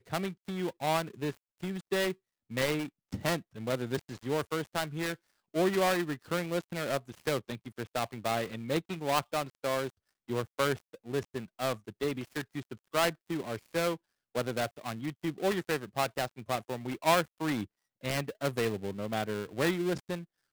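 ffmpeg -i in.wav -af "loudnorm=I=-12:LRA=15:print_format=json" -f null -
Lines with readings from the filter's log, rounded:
"input_i" : "-33.5",
"input_tp" : "-10.9",
"input_lra" : "2.1",
"input_thresh" : "-43.6",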